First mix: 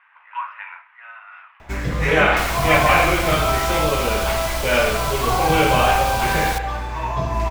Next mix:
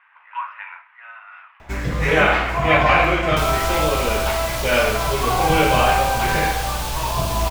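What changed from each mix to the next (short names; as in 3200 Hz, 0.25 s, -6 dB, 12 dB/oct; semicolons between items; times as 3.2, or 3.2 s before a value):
second sound: entry +1.00 s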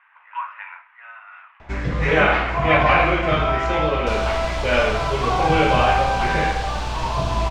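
second sound: entry +0.70 s; master: add air absorption 120 m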